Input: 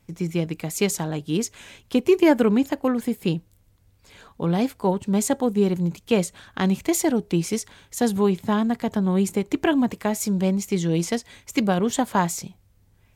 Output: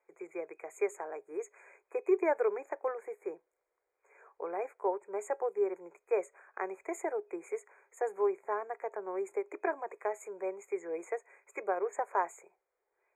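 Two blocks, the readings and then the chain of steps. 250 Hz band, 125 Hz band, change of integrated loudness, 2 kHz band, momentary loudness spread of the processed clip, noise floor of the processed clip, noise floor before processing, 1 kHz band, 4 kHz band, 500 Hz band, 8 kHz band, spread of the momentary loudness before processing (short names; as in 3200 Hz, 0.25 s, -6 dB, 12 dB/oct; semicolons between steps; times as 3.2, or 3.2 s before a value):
-22.5 dB, under -40 dB, -13.0 dB, -11.0 dB, 11 LU, -84 dBFS, -60 dBFS, -8.0 dB, under -40 dB, -8.5 dB, -23.5 dB, 7 LU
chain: elliptic high-pass 390 Hz, stop band 40 dB; FFT band-reject 2500–6500 Hz; tape spacing loss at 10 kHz 21 dB; gain -6 dB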